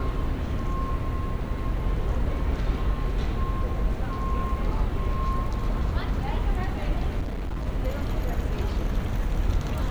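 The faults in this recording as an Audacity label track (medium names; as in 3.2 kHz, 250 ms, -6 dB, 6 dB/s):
7.200000	7.670000	clipped -26.5 dBFS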